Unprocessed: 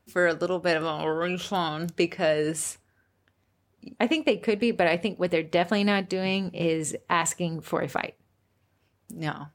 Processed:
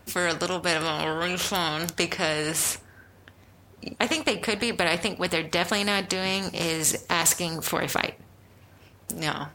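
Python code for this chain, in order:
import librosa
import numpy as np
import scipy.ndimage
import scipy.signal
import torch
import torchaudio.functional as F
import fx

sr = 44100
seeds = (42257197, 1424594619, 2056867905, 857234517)

y = fx.high_shelf_res(x, sr, hz=4100.0, db=7.0, q=1.5, at=(6.42, 7.67))
y = fx.spectral_comp(y, sr, ratio=2.0)
y = y * 10.0 ** (2.5 / 20.0)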